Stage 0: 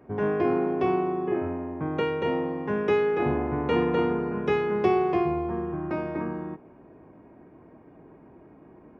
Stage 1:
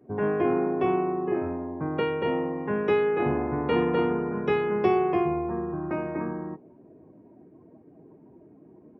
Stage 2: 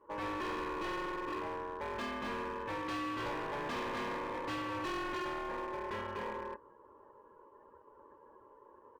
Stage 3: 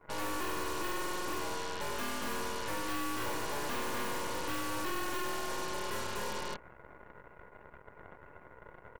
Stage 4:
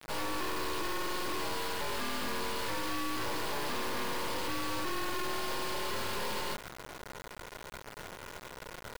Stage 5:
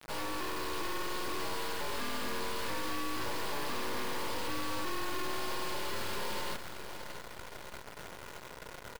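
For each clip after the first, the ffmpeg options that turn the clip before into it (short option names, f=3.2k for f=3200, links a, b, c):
-af "afftdn=nr=14:nf=-48,highpass=79"
-af "aecho=1:1:0.9:0.47,aeval=exprs='val(0)*sin(2*PI*720*n/s)':c=same,volume=30.5dB,asoftclip=hard,volume=-30.5dB,volume=-4.5dB"
-af "aeval=exprs='0.0188*(cos(1*acos(clip(val(0)/0.0188,-1,1)))-cos(1*PI/2))+0.00944*(cos(8*acos(clip(val(0)/0.0188,-1,1)))-cos(8*PI/2))':c=same"
-af "aresample=11025,asoftclip=type=tanh:threshold=-38dB,aresample=44100,acrusher=bits=7:mix=0:aa=0.000001,volume=7.5dB"
-af "aecho=1:1:630|1260|1890|2520|3150:0.282|0.13|0.0596|0.0274|0.0126,volume=-2dB"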